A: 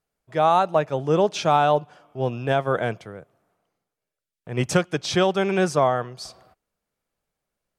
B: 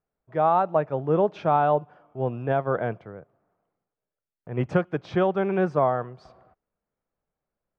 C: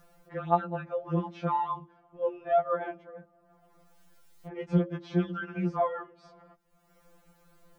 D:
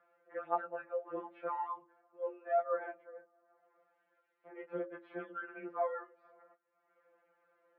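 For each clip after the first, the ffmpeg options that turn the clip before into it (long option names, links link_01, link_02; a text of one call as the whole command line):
ffmpeg -i in.wav -af "lowpass=1500,volume=-2dB" out.wav
ffmpeg -i in.wav -af "acompressor=mode=upward:threshold=-32dB:ratio=2.5,bandreject=frequency=48.6:width_type=h:width=4,bandreject=frequency=97.2:width_type=h:width=4,bandreject=frequency=145.8:width_type=h:width=4,bandreject=frequency=194.4:width_type=h:width=4,bandreject=frequency=243:width_type=h:width=4,bandreject=frequency=291.6:width_type=h:width=4,bandreject=frequency=340.2:width_type=h:width=4,bandreject=frequency=388.8:width_type=h:width=4,bandreject=frequency=437.4:width_type=h:width=4,bandreject=frequency=486:width_type=h:width=4,bandreject=frequency=534.6:width_type=h:width=4,afftfilt=real='re*2.83*eq(mod(b,8),0)':imag='im*2.83*eq(mod(b,8),0)':win_size=2048:overlap=0.75,volume=-3dB" out.wav
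ffmpeg -i in.wav -af "flanger=delay=4.9:depth=3.6:regen=-65:speed=0.44:shape=sinusoidal,highpass=frequency=390:width=0.5412,highpass=frequency=390:width=1.3066,equalizer=frequency=400:width_type=q:width=4:gain=-5,equalizer=frequency=780:width_type=q:width=4:gain=-8,equalizer=frequency=1100:width_type=q:width=4:gain=-5,lowpass=frequency=2000:width=0.5412,lowpass=frequency=2000:width=1.3066,volume=1.5dB" -ar 22050 -c:a wmav2 -b:a 128k out.wma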